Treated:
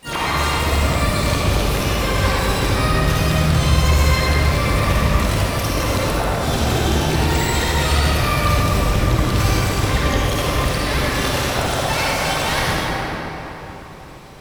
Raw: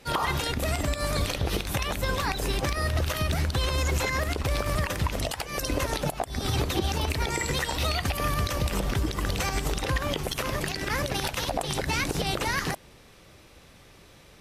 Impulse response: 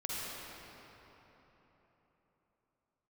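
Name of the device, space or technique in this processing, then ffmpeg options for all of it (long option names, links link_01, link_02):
shimmer-style reverb: -filter_complex "[0:a]asettb=1/sr,asplit=3[link_01][link_02][link_03];[link_01]atrim=end=11.774[link_04];[link_02]atrim=start=11.77:end=12.36,asetpts=PTS-STARTPTS,afade=type=in:duration=0.004:curve=qsin,afade=type=out:start_time=0.586:duration=0.004:curve=qsin,lowshelf=frequency=480:width_type=q:width=3:gain=-7.5[link_05];[link_03]atrim=start=12.356[link_06];[link_04][link_05]acrossfade=duration=0.004:curve1=hsin:curve2=qsin[link_07];[link_07][link_06]acrossfade=duration=0.004:curve1=qsin:curve2=hsin,asplit=2[link_08][link_09];[link_09]asetrate=88200,aresample=44100,atempo=0.5,volume=-5dB[link_10];[link_08][link_10]amix=inputs=2:normalize=0[link_11];[1:a]atrim=start_sample=2205[link_12];[link_11][link_12]afir=irnorm=-1:irlink=0,volume=4.5dB"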